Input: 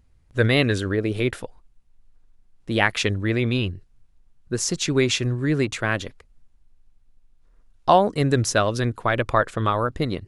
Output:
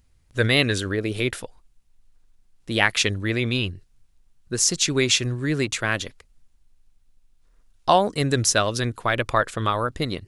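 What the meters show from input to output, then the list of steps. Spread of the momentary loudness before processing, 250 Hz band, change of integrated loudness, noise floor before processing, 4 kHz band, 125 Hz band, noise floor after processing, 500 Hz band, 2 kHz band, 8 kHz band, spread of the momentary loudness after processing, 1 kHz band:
11 LU, -2.5 dB, 0.0 dB, -58 dBFS, +4.0 dB, -2.5 dB, -61 dBFS, -2.0 dB, +1.0 dB, +6.0 dB, 9 LU, -1.0 dB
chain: high shelf 2400 Hz +9.5 dB; gain -2.5 dB

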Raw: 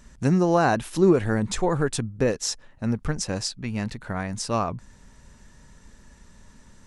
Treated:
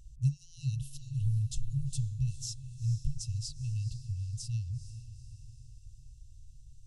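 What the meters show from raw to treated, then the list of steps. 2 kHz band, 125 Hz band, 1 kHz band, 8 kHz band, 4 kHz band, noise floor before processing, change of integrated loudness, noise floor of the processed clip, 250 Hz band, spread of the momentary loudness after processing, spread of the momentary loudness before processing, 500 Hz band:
under -30 dB, -2.5 dB, under -40 dB, -11.0 dB, -12.5 dB, -53 dBFS, -11.0 dB, -53 dBFS, under -20 dB, 18 LU, 11 LU, under -40 dB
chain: resonant high shelf 2100 Hz -10.5 dB, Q 3; FFT band-reject 140–2600 Hz; diffused feedback echo 0.453 s, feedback 49%, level -13 dB

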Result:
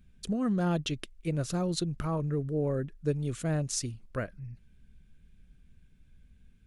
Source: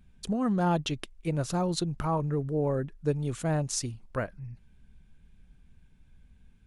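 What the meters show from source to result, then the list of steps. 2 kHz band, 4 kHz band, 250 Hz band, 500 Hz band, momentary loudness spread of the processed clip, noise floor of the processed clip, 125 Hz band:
-2.0 dB, -1.0 dB, -1.0 dB, -2.5 dB, 8 LU, -61 dBFS, -1.0 dB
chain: bell 880 Hz -9.5 dB 0.62 oct; gain -1 dB

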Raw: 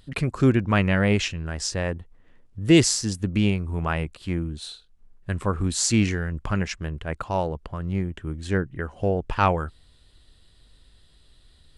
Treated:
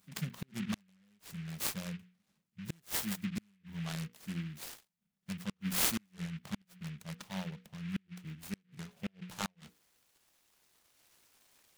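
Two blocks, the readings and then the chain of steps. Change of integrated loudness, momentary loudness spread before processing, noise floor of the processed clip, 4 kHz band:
-15.0 dB, 13 LU, -80 dBFS, -12.0 dB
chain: bin magnitudes rounded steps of 15 dB; resonant low shelf 230 Hz +7 dB, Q 3; notches 60/120/180/240/300/360/420/480 Hz; high-pass sweep 200 Hz -> 3000 Hz, 9.58–11.04; flipped gate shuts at -4 dBFS, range -37 dB; pre-emphasis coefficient 0.9; noise-modulated delay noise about 2100 Hz, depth 0.16 ms; gain -3 dB

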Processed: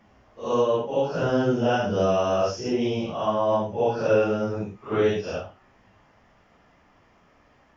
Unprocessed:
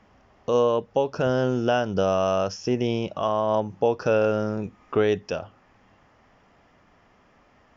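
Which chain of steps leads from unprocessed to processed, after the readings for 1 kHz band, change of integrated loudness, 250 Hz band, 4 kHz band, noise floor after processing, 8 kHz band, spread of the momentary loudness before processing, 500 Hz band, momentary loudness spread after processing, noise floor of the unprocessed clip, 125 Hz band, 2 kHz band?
0.0 dB, 0.0 dB, +0.5 dB, 0.0 dB, -60 dBFS, n/a, 6 LU, 0.0 dB, 8 LU, -59 dBFS, -0.5 dB, 0.0 dB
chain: phase scrambler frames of 0.2 s

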